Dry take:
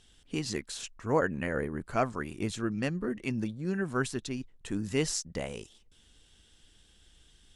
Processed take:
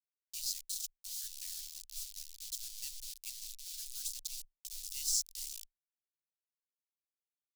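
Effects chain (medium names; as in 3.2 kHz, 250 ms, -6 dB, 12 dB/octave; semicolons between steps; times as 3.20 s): 1.61–2.52 s: low-pass 1.1 kHz 12 dB/octave; thinning echo 334 ms, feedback 78%, high-pass 370 Hz, level -20 dB; word length cut 6-bit, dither none; inverse Chebyshev band-stop 100–840 Hz, stop band 80 dB; trim +1.5 dB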